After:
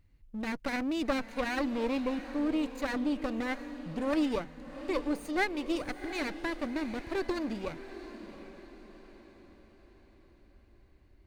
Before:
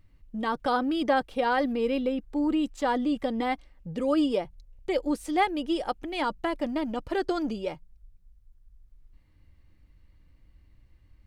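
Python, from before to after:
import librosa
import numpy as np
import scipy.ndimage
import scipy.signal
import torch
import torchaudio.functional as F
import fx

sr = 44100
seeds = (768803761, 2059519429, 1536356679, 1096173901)

p1 = fx.lower_of_two(x, sr, delay_ms=0.46)
p2 = p1 + fx.echo_diffused(p1, sr, ms=738, feedback_pct=47, wet_db=-12.0, dry=0)
y = p2 * librosa.db_to_amplitude(-4.0)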